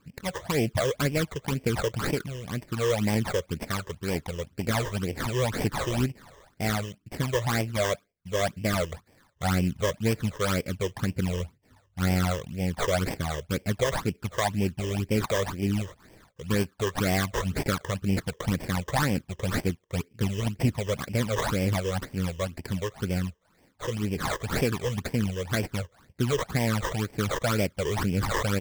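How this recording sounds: aliases and images of a low sample rate 2.8 kHz, jitter 20%; phasing stages 12, 2 Hz, lowest notch 230–1300 Hz

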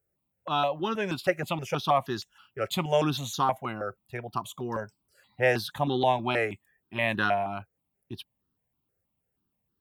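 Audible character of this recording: notches that jump at a steady rate 6.3 Hz 980–2300 Hz

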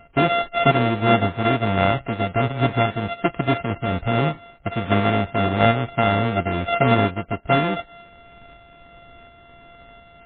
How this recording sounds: a buzz of ramps at a fixed pitch in blocks of 64 samples; tremolo saw up 1.4 Hz, depth 35%; MP3

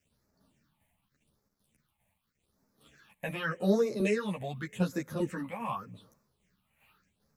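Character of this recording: a quantiser's noise floor 12-bit, dither none; phasing stages 6, 0.85 Hz, lowest notch 350–3000 Hz; tremolo saw down 2.5 Hz, depth 50%; a shimmering, thickened sound

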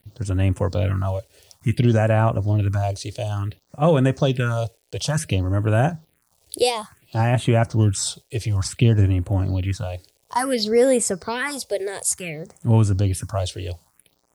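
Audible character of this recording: a quantiser's noise floor 10-bit, dither none; phasing stages 4, 0.57 Hz, lowest notch 190–5000 Hz

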